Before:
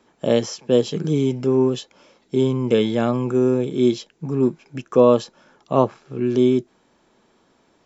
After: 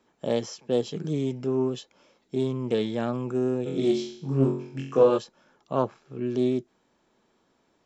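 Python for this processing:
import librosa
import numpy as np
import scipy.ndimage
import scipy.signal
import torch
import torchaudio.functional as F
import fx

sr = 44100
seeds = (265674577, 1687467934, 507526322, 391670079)

y = fx.room_flutter(x, sr, wall_m=3.8, rt60_s=0.6, at=(3.65, 5.17), fade=0.02)
y = fx.doppler_dist(y, sr, depth_ms=0.21)
y = y * 10.0 ** (-8.0 / 20.0)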